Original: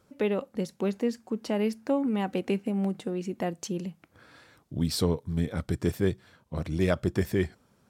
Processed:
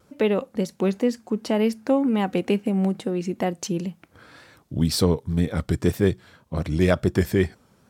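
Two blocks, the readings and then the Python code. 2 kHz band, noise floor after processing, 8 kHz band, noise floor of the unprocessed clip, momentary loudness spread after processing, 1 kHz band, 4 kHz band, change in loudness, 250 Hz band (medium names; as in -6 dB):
+6.0 dB, -60 dBFS, +6.0 dB, -66 dBFS, 8 LU, +6.0 dB, +6.0 dB, +6.0 dB, +6.0 dB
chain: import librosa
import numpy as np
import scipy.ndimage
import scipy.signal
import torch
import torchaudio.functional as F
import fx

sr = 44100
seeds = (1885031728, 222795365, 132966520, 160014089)

y = fx.wow_flutter(x, sr, seeds[0], rate_hz=2.1, depth_cents=52.0)
y = F.gain(torch.from_numpy(y), 6.0).numpy()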